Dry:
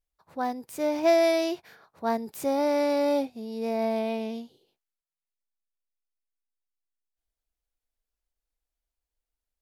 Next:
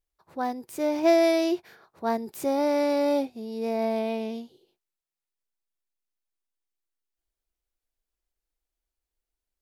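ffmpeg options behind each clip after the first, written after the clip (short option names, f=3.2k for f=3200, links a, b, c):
-af "equalizer=f=360:w=5.1:g=8"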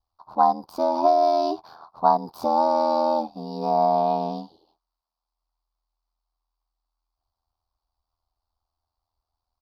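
-af "aeval=exprs='val(0)*sin(2*PI*41*n/s)':c=same,acompressor=threshold=-27dB:ratio=12,firequalizer=gain_entry='entry(210,0);entry(450,-5);entry(740,13);entry(1100,14);entry(1900,-19);entry(4600,7);entry(7200,-17);entry(13000,-10)':delay=0.05:min_phase=1,volume=5.5dB"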